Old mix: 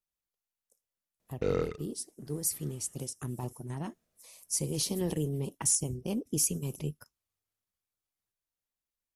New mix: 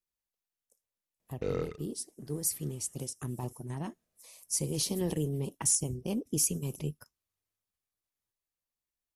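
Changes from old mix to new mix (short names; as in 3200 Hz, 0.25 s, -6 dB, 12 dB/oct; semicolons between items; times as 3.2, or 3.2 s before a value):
background -3.5 dB; master: add notch 1400 Hz, Q 22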